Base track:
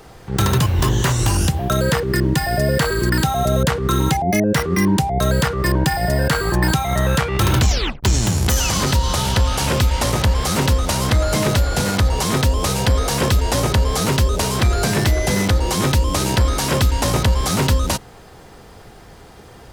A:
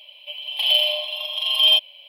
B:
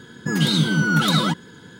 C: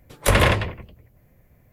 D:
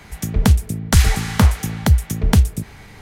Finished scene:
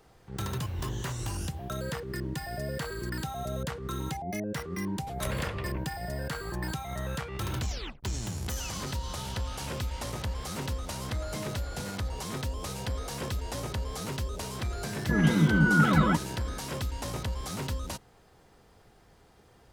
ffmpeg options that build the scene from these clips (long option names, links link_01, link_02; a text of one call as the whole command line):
ffmpeg -i bed.wav -i cue0.wav -i cue1.wav -i cue2.wav -filter_complex "[0:a]volume=-17dB[link_01];[3:a]acompressor=threshold=-32dB:ratio=6:attack=3.2:release=140:knee=1:detection=peak[link_02];[2:a]lowpass=frequency=2300:width=0.5412,lowpass=frequency=2300:width=1.3066[link_03];[link_02]atrim=end=1.72,asetpts=PTS-STARTPTS,volume=-1.5dB,afade=type=in:duration=0.004:curve=hsin,afade=type=out:start_time=1.716:duration=0.004:curve=hsin,adelay=219177S[link_04];[link_03]atrim=end=1.79,asetpts=PTS-STARTPTS,volume=-3dB,afade=type=in:duration=0.004:curve=hsin,afade=type=out:start_time=1.786:duration=0.004:curve=hsin,adelay=14830[link_05];[link_01][link_04][link_05]amix=inputs=3:normalize=0" out.wav